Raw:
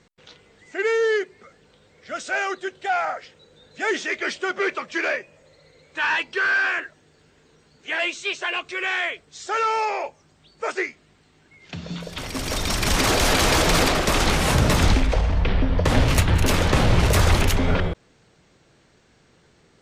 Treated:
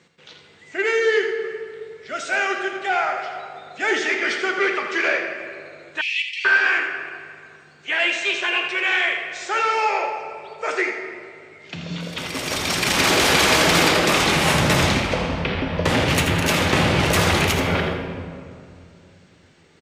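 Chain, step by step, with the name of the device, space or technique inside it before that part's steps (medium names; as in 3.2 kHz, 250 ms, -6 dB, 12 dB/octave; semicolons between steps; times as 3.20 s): PA in a hall (high-pass 130 Hz 12 dB/octave; peaking EQ 2.5 kHz +4.5 dB 1.2 oct; delay 82 ms -8.5 dB; reverberation RT60 2.4 s, pre-delay 3 ms, DRR 4 dB); 6.01–6.45 s: steep high-pass 2.1 kHz 96 dB/octave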